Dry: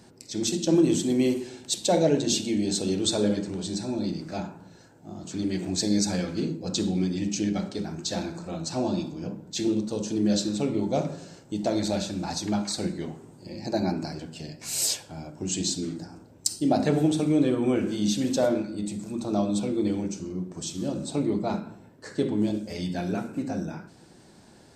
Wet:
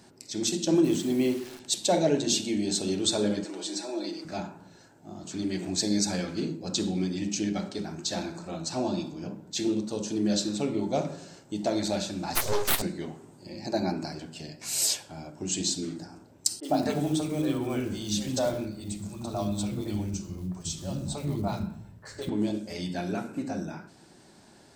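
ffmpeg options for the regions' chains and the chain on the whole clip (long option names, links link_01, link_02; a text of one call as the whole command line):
ffmpeg -i in.wav -filter_complex "[0:a]asettb=1/sr,asplit=3[link_01][link_02][link_03];[link_01]atrim=end=0.844[link_04];[link_02]atrim=start=0.84:end=1.6,asetpts=PTS-STARTPTS,afade=type=in:duration=0.004:curve=qsin,afade=type=out:start_time=0.756:duration=0.004:curve=qsin,lowpass=frequency=3800:poles=1,acrusher=bits=8:dc=4:mix=0:aa=0.000001[link_05];[link_03]atrim=start=1.596[link_06];[link_04][link_05]acrossfade=duration=0.004:curve1=hsin:curve2=qsin[link_07];[link_07][link_06]acrossfade=duration=0.004:curve1=qsin:curve2=hsin,asettb=1/sr,asplit=3[link_08][link_09][link_10];[link_08]atrim=end=3.444[link_11];[link_09]atrim=start=3.44:end=4.25,asetpts=PTS-STARTPTS,afade=type=in:duration=0.004:curve=qsin,afade=type=out:start_time=0.806:duration=0.004:curve=qsin,highpass=frequency=310:width=0.5412,highpass=frequency=310:width=1.3066,aecho=1:1:6.2:0.74,atrim=end_sample=35721[link_12];[link_10]atrim=start=4.246[link_13];[link_11][link_12]acrossfade=duration=0.004:curve1=hsin:curve2=qsin[link_14];[link_14][link_13]acrossfade=duration=0.004:curve1=qsin:curve2=hsin,asettb=1/sr,asplit=3[link_15][link_16][link_17];[link_15]atrim=end=12.354[link_18];[link_16]atrim=start=12.35:end=12.82,asetpts=PTS-STARTPTS,afade=type=in:duration=0.004:curve=qsin,afade=type=out:start_time=0.466:duration=0.004:curve=qsin,highpass=frequency=190:width=0.5412,highpass=frequency=190:width=1.3066,bass=frequency=250:gain=13,treble=frequency=4000:gain=14,aeval=exprs='abs(val(0))':channel_layout=same[link_19];[link_17]atrim=start=12.816[link_20];[link_18][link_19]acrossfade=duration=0.004:curve1=hsin:curve2=qsin[link_21];[link_21][link_20]acrossfade=duration=0.004:curve1=qsin:curve2=hsin,asettb=1/sr,asplit=3[link_22][link_23][link_24];[link_22]atrim=end=16.604[link_25];[link_23]atrim=start=16.6:end=22.29,asetpts=PTS-STARTPTS,afade=type=in:duration=0.004:curve=qsin,afade=type=out:start_time=5.686:duration=0.004:curve=qsin,acrusher=bits=8:mode=log:mix=0:aa=0.000001,asubboost=boost=10:cutoff=97,acrossover=split=390|1900[link_26][link_27][link_28];[link_28]adelay=30[link_29];[link_26]adelay=90[link_30];[link_30][link_27][link_29]amix=inputs=3:normalize=0,atrim=end_sample=250929[link_31];[link_24]atrim=start=22.286[link_32];[link_25][link_31]acrossfade=duration=0.004:curve1=hsin:curve2=qsin[link_33];[link_33][link_32]acrossfade=duration=0.004:curve1=qsin:curve2=hsin,lowshelf=frequency=240:gain=-5.5,bandreject=frequency=490:width=12" out.wav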